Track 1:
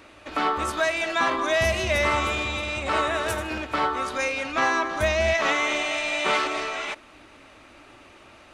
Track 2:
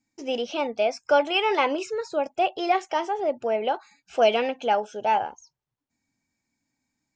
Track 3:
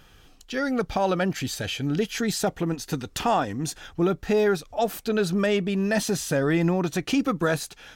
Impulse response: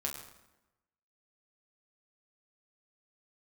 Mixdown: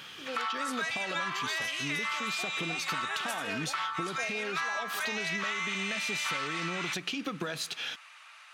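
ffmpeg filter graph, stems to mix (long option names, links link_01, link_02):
-filter_complex "[0:a]highpass=frequency=1100:width=0.5412,highpass=frequency=1100:width=1.3066,volume=0.5dB[link_01];[1:a]volume=-12dB[link_02];[2:a]highpass=frequency=130:width=0.5412,highpass=frequency=130:width=1.3066,equalizer=frequency=3200:width=0.77:gain=13,acompressor=threshold=-23dB:ratio=6,volume=0.5dB,asplit=2[link_03][link_04];[link_04]volume=-23.5dB[link_05];[link_02][link_03]amix=inputs=2:normalize=0,acompressor=threshold=-30dB:ratio=6,volume=0dB[link_06];[3:a]atrim=start_sample=2205[link_07];[link_05][link_07]afir=irnorm=-1:irlink=0[link_08];[link_01][link_06][link_08]amix=inputs=3:normalize=0,acompressor=threshold=-30dB:ratio=6"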